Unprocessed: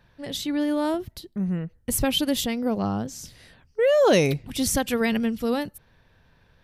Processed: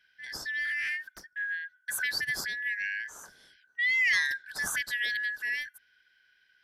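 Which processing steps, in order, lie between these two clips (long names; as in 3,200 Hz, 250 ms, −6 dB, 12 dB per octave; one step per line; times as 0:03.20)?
band-splitting scrambler in four parts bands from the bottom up 4123
0:00.65–0:01.63: highs frequency-modulated by the lows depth 0.29 ms
level −8 dB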